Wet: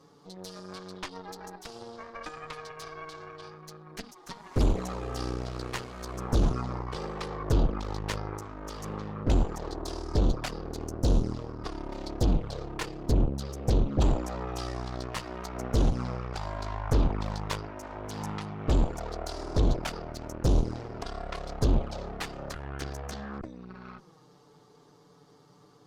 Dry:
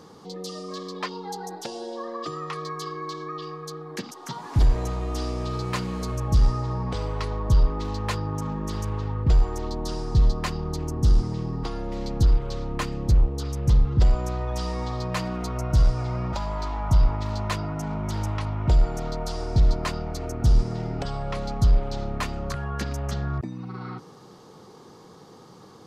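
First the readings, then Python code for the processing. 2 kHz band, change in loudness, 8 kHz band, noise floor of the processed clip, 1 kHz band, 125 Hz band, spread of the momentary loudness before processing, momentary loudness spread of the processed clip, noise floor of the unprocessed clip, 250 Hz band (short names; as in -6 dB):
-3.5 dB, -5.0 dB, -3.5 dB, -58 dBFS, -5.0 dB, -6.5 dB, 12 LU, 16 LU, -48 dBFS, -2.0 dB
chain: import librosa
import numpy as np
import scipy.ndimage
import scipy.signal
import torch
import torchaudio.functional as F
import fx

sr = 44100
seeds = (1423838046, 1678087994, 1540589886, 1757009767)

y = fx.env_flanger(x, sr, rest_ms=7.6, full_db=-14.5)
y = fx.cheby_harmonics(y, sr, harmonics=(6,), levels_db=(-6,), full_scale_db=-11.0)
y = F.gain(torch.from_numpy(y), -7.0).numpy()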